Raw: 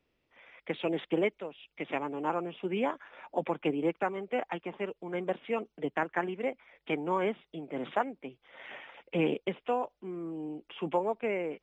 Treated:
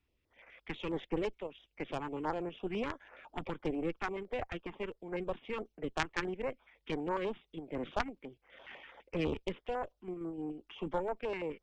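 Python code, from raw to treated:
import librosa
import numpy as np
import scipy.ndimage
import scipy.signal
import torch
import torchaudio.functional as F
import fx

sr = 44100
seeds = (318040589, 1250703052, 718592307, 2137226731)

p1 = fx.level_steps(x, sr, step_db=19)
p2 = x + F.gain(torch.from_numpy(p1), -1.0).numpy()
p3 = fx.cheby_harmonics(p2, sr, harmonics=(3, 4, 5), levels_db=(-8, -23, -17), full_scale_db=-12.5)
p4 = fx.low_shelf_res(p3, sr, hz=110.0, db=7.0, q=1.5)
p5 = fx.filter_held_notch(p4, sr, hz=12.0, low_hz=540.0, high_hz=3400.0)
y = F.gain(torch.from_numpy(p5), 1.0).numpy()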